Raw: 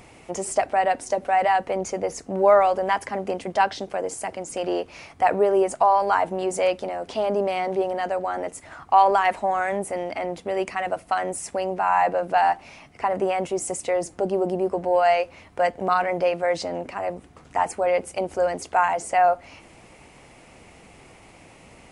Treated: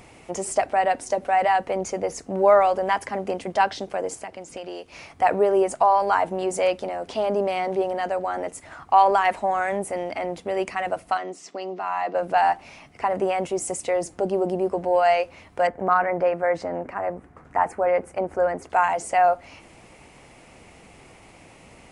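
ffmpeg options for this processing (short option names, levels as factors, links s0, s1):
-filter_complex "[0:a]asettb=1/sr,asplit=3[s0][s1][s2];[s0]atrim=end=4.154[s3];[s1]atrim=start=4.15:end=4.92,asetpts=PTS-STARTPTS,afade=t=in:d=0.004:c=qsin,afade=t=out:st=0.766:d=0.004:c=qsin,acrossover=split=2300|5100[s4][s5][s6];[s4]acompressor=threshold=0.02:ratio=4[s7];[s5]acompressor=threshold=0.00562:ratio=4[s8];[s6]acompressor=threshold=0.00282:ratio=4[s9];[s7][s8][s9]amix=inputs=3:normalize=0[s10];[s2]atrim=start=4.916[s11];[s3][s10]acrossfade=d=0.004:c1=hsin:c2=qsin[s12];[s12][s11]acrossfade=d=0.004:c1=qsin:c2=hsin,asettb=1/sr,asplit=3[s13][s14][s15];[s13]atrim=end=11.174[s16];[s14]atrim=start=11.17:end=12.15,asetpts=PTS-STARTPTS,afade=t=in:d=0.004:c=qsin,afade=t=out:st=0.976:d=0.004:c=qsin,highpass=f=210:w=0.5412,highpass=f=210:w=1.3066,equalizer=f=230:t=q:w=4:g=-7,equalizer=f=540:t=q:w=4:g=-9,equalizer=f=870:t=q:w=4:g=-10,equalizer=f=1600:t=q:w=4:g=-9,equalizer=f=2400:t=q:w=4:g=-6,lowpass=f=5700:w=0.5412,lowpass=f=5700:w=1.3066[s17];[s15]atrim=start=12.146[s18];[s16][s17]acrossfade=d=0.004:c1=hsin:c2=qsin[s19];[s19][s18]acrossfade=d=0.004:c1=qsin:c2=hsin,asettb=1/sr,asplit=3[s20][s21][s22];[s20]atrim=end=15.674[s23];[s21]atrim=start=15.67:end=18.7,asetpts=PTS-STARTPTS,afade=t=in:d=0.004:c=qsin,afade=t=out:st=3.026:d=0.004:c=qsin,highshelf=f=2400:t=q:w=1.5:g=-10.5[s24];[s22]atrim=start=18.696[s25];[s23][s24]acrossfade=d=0.004:c1=hsin:c2=qsin[s26];[s26][s25]acrossfade=d=0.004:c1=qsin:c2=hsin"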